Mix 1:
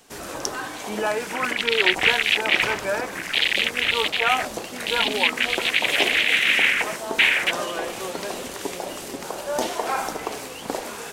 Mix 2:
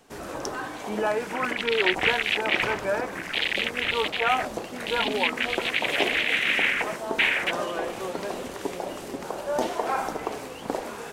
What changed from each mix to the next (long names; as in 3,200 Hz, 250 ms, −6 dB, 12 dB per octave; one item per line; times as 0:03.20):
master: add high-shelf EQ 2,300 Hz −9.5 dB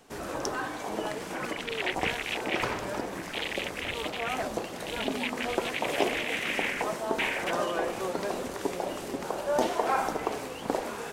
speech −12.0 dB
second sound −8.5 dB